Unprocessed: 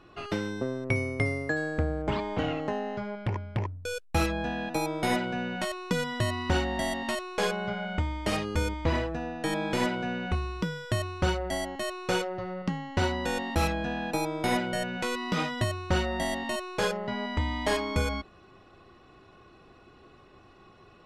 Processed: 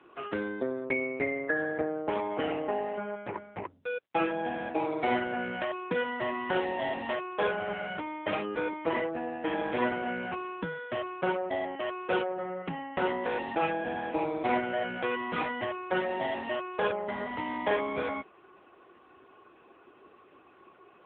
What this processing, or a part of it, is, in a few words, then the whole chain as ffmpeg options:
telephone: -af "highpass=97,highpass=290,lowpass=3.1k,volume=2.5dB" -ar 8000 -c:a libopencore_amrnb -b:a 6700

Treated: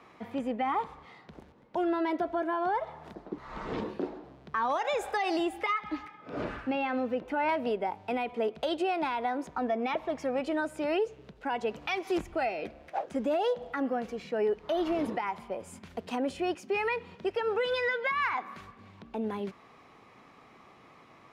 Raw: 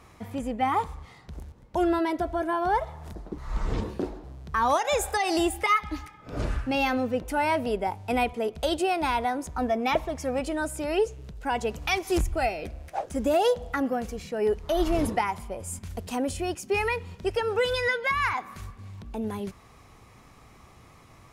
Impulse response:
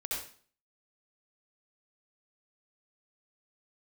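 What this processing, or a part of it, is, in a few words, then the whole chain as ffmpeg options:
DJ mixer with the lows and highs turned down: -filter_complex "[0:a]asettb=1/sr,asplit=3[a][b][c];[a]atrim=end=5.804[d];[b]atrim=start=5.8:end=7.49,asetpts=PTS-STARTPTS,afade=t=in:d=0.004:c=qsin,afade=t=out:st=1.686:d=0.004:c=qsin,acrossover=split=3200[e][f];[f]acompressor=threshold=-51dB:ratio=4:attack=1:release=60[g];[e][g]amix=inputs=2:normalize=0[h];[c]atrim=start=7.486[i];[d][h]acrossfade=d=0.004:c1=hsin:c2=qsin[j];[j][i]acrossfade=d=0.004:c1=qsin:c2=hsin,acrossover=split=170 4300:gain=0.0794 1 0.141[k][l][m];[k][l][m]amix=inputs=3:normalize=0,alimiter=limit=-21.5dB:level=0:latency=1:release=131"

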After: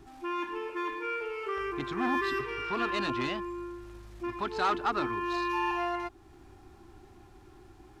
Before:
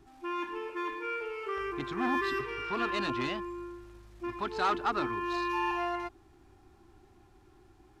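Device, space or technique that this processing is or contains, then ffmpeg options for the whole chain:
parallel compression: -filter_complex "[0:a]asplit=2[a][b];[b]acompressor=threshold=-49dB:ratio=6,volume=-0.5dB[c];[a][c]amix=inputs=2:normalize=0"

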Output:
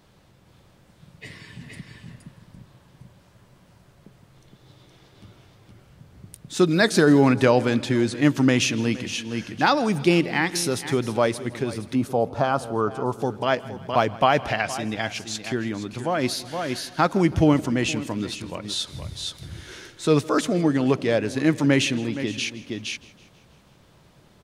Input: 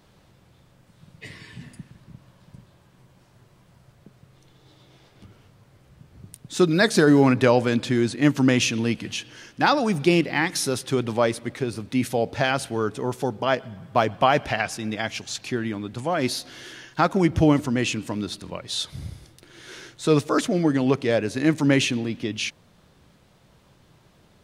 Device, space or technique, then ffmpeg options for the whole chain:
ducked delay: -filter_complex "[0:a]asplit=3[a][b][c];[b]adelay=468,volume=-3dB[d];[c]apad=whole_len=1098193[e];[d][e]sidechaincompress=threshold=-37dB:ratio=10:attack=20:release=241[f];[a][f]amix=inputs=2:normalize=0,asettb=1/sr,asplit=3[g][h][i];[g]atrim=end=11.954[j];[h]atrim=start=11.95:end=13.22,asetpts=PTS-STARTPTS,afade=t=in:d=0.004:c=qsin,afade=t=out:st=1.266:d=0.004:c=qsin,highshelf=f=1.5k:t=q:w=3:g=-7.5[k];[i]atrim=start=13.216[l];[j][k]acrossfade=d=0.004:c1=hsin:c2=qsin[m];[m][l]acrossfade=d=0.004:c1=qsin:c2=hsin,aecho=1:1:162|324|486|648|810:0.0891|0.0517|0.03|0.0174|0.0101"

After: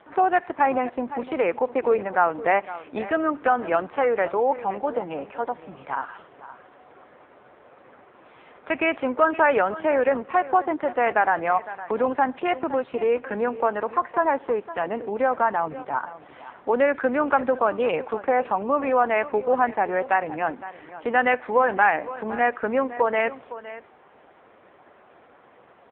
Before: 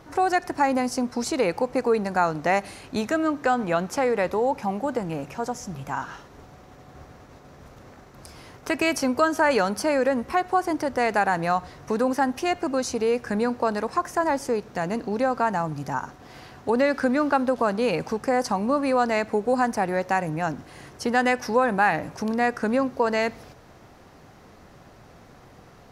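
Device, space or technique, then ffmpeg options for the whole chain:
satellite phone: -af "highpass=360,lowpass=3.1k,aecho=1:1:512:0.178,volume=3dB" -ar 8000 -c:a libopencore_amrnb -b:a 5900

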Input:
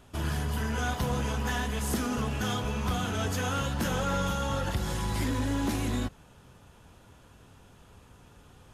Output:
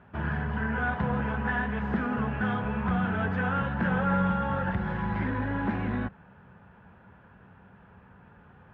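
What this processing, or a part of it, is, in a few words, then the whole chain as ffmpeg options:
bass cabinet: -af "highpass=66,equalizer=f=190:t=q:w=4:g=9,equalizer=f=300:t=q:w=4:g=-5,equalizer=f=870:t=q:w=4:g=4,equalizer=f=1.6k:t=q:w=4:g=8,lowpass=f=2.3k:w=0.5412,lowpass=f=2.3k:w=1.3066"

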